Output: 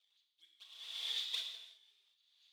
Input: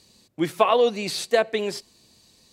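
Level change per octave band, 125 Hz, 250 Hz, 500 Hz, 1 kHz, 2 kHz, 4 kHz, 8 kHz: under -40 dB, under -40 dB, under -40 dB, under -40 dB, -22.5 dB, -7.0 dB, -18.5 dB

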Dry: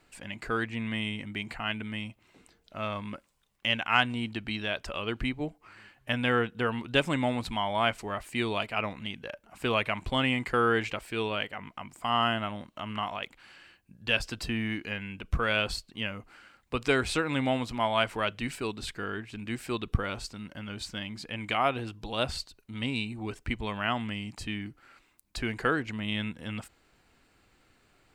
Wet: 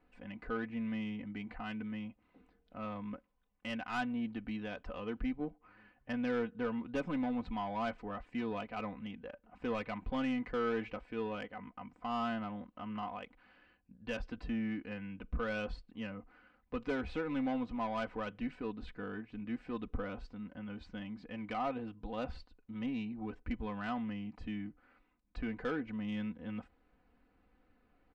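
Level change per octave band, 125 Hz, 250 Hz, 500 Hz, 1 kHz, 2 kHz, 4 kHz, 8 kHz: -11.0 dB, -3.5 dB, -8.0 dB, -9.5 dB, -13.5 dB, -19.0 dB, under -20 dB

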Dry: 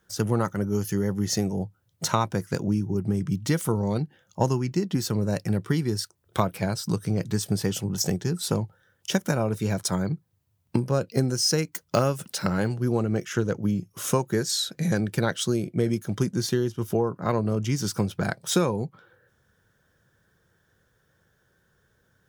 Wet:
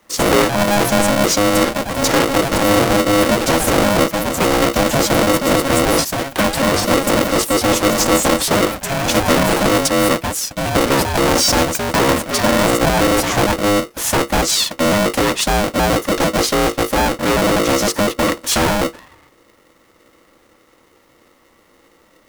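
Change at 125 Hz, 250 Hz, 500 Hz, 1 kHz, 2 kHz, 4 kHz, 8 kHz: +2.5 dB, +9.0 dB, +12.5 dB, +16.0 dB, +17.5 dB, +13.5 dB, +13.0 dB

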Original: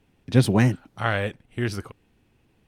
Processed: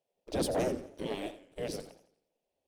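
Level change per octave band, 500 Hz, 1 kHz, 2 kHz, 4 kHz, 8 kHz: -5.5 dB, -10.5 dB, -18.0 dB, -8.0 dB, -4.5 dB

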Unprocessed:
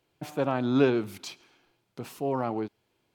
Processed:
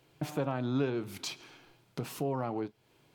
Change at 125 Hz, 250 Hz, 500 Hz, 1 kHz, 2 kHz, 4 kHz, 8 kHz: -1.0 dB, -6.5 dB, -7.0 dB, -5.5 dB, -6.5 dB, -1.0 dB, +2.0 dB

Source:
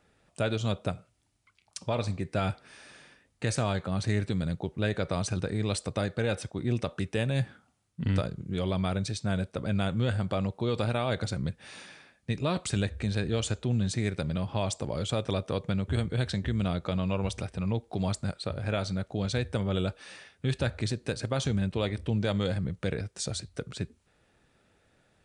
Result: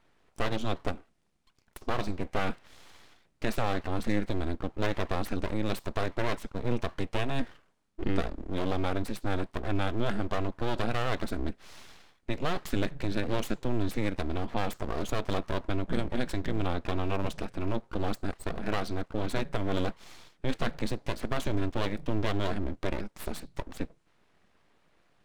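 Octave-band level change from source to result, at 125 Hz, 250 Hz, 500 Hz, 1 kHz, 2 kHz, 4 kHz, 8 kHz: -6.0 dB, -1.5 dB, -1.5 dB, +3.0 dB, +0.5 dB, -3.5 dB, -8.5 dB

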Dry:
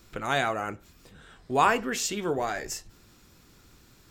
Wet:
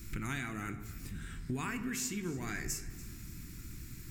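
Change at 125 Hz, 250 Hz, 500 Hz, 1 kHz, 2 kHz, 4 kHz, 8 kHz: +0.5 dB, -3.5 dB, -17.0 dB, -19.0 dB, -10.0 dB, -11.5 dB, -5.0 dB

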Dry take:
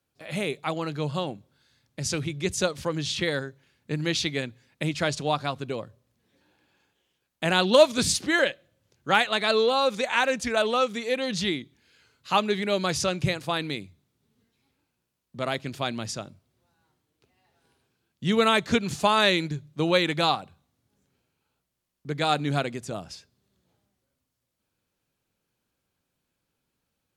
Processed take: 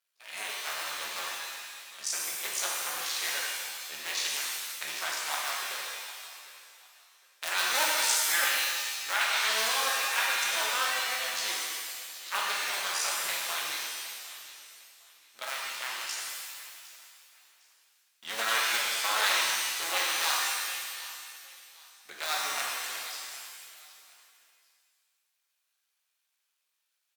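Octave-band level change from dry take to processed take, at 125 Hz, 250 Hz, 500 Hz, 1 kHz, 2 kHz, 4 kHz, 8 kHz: under -35 dB, -27.0 dB, -17.5 dB, -5.5 dB, -0.5 dB, -0.5 dB, +5.5 dB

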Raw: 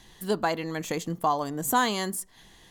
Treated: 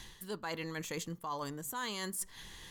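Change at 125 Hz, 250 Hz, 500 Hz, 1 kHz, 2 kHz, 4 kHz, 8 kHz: -9.0 dB, -12.0 dB, -13.0 dB, -15.0 dB, -10.0 dB, -8.0 dB, -7.0 dB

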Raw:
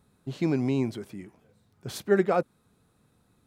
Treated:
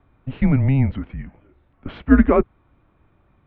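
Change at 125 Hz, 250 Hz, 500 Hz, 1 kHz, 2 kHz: +13.5 dB, +10.5 dB, +3.0 dB, +5.0 dB, +7.0 dB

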